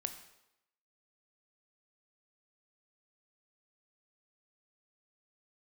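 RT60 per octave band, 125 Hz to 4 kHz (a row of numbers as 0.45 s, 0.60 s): 0.65 s, 0.80 s, 0.85 s, 0.85 s, 0.80 s, 0.75 s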